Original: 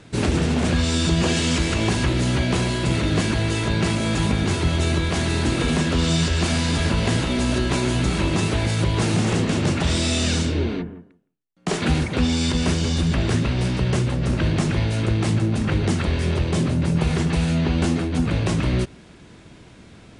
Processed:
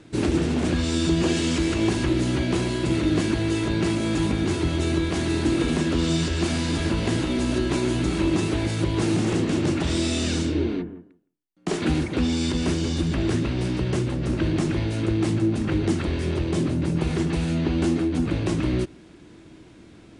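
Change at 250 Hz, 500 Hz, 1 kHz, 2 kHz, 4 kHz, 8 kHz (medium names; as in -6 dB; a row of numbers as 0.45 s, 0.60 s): 0.0 dB, -0.5 dB, -5.0 dB, -5.0 dB, -5.0 dB, -5.0 dB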